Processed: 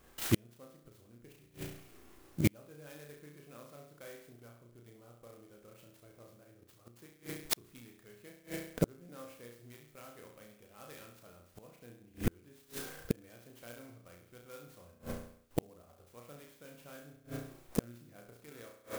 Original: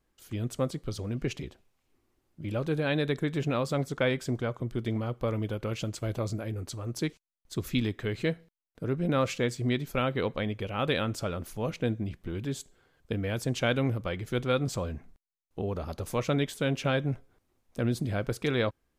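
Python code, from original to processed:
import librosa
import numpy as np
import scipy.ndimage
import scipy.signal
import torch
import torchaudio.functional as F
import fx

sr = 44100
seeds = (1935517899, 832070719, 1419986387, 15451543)

y = fx.low_shelf(x, sr, hz=280.0, db=-8.0)
y = fx.notch(y, sr, hz=890.0, q=12.0)
y = fx.room_flutter(y, sr, wall_m=5.8, rt60_s=0.62)
y = fx.gate_flip(y, sr, shuts_db=-30.0, range_db=-39)
y = fx.clock_jitter(y, sr, seeds[0], jitter_ms=0.061)
y = F.gain(torch.from_numpy(y), 15.5).numpy()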